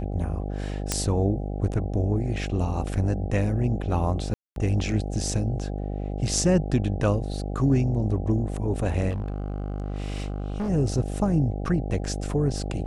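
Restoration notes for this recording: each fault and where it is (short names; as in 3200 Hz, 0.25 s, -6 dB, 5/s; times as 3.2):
buzz 50 Hz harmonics 16 -30 dBFS
0.92 pop -8 dBFS
4.34–4.56 gap 0.222 s
9.09–10.7 clipped -25 dBFS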